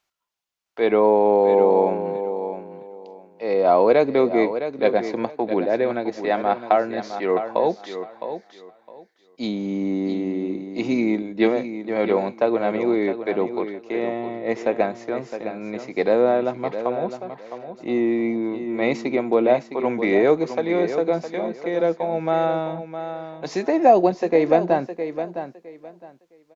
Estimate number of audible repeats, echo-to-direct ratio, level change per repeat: 2, -10.0 dB, -13.5 dB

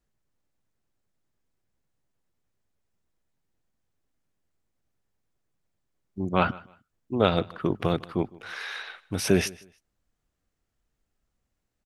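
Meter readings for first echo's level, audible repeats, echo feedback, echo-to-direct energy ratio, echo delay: -22.5 dB, 2, 25%, -22.0 dB, 0.155 s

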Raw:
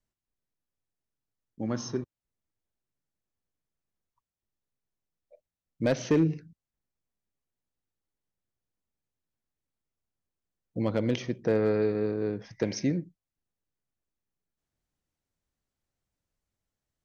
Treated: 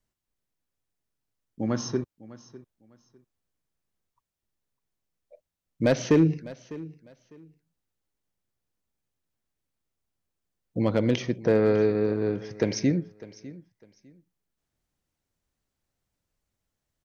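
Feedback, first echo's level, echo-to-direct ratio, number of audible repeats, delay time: 23%, -18.5 dB, -18.5 dB, 2, 0.602 s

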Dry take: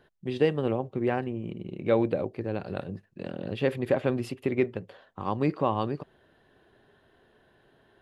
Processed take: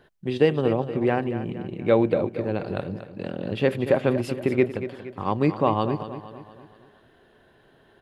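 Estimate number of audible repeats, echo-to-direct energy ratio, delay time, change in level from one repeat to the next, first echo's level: 4, -11.0 dB, 0.234 s, -6.5 dB, -12.0 dB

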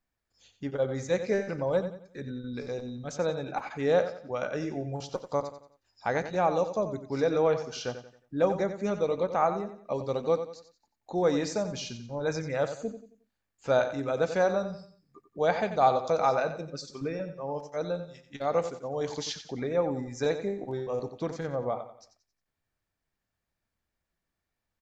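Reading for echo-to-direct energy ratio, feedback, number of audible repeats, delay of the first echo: -10.0 dB, 36%, 3, 90 ms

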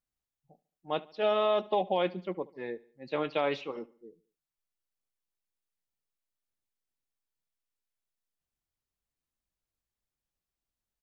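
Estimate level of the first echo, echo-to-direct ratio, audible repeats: -21.5 dB, -20.5 dB, 3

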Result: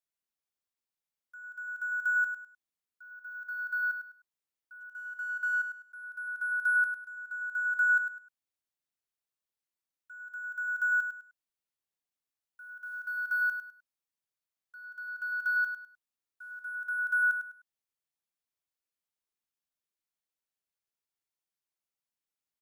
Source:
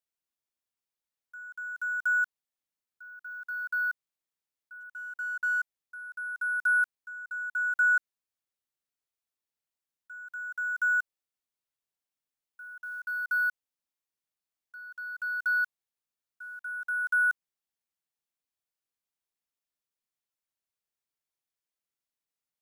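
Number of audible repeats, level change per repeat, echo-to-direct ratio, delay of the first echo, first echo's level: 3, -11.0 dB, -7.5 dB, 0.102 s, -8.0 dB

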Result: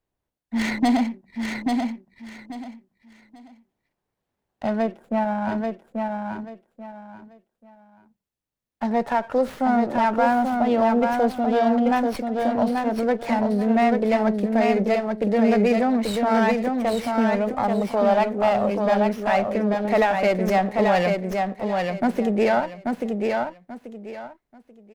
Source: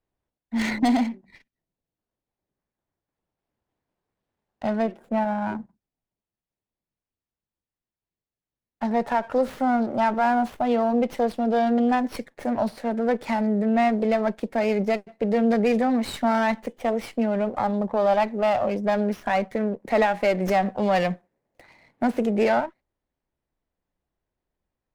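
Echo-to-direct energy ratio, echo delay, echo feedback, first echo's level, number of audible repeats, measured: -3.5 dB, 0.836 s, 25%, -4.0 dB, 3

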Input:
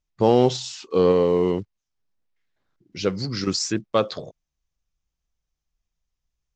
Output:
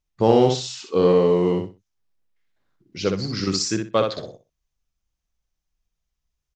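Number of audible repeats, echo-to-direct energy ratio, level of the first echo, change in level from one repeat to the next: 3, -5.0 dB, -5.0 dB, -13.5 dB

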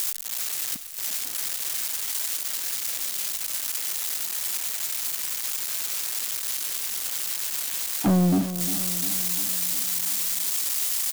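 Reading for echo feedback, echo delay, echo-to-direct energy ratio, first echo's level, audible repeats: 58%, 0.351 s, -10.0 dB, -12.0 dB, 5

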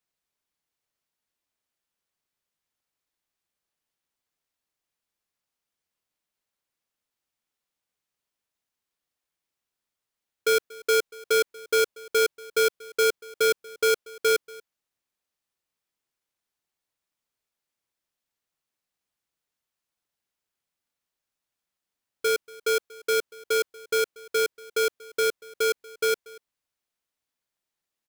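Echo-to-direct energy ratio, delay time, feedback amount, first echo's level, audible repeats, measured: -22.0 dB, 0.236 s, no steady repeat, -22.0 dB, 1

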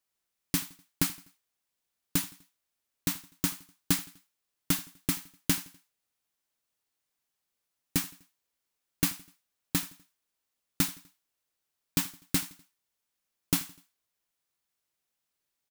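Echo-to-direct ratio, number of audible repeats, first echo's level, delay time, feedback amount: -21.0 dB, 3, -22.0 dB, 83 ms, 48%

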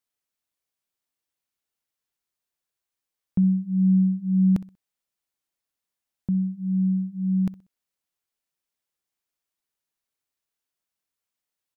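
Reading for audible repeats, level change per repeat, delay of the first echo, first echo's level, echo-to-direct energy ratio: 2, -11.0 dB, 63 ms, -18.0 dB, -17.5 dB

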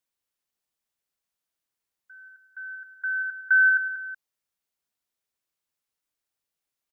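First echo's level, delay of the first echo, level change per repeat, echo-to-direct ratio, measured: -11.0 dB, 0.186 s, -7.0 dB, -10.0 dB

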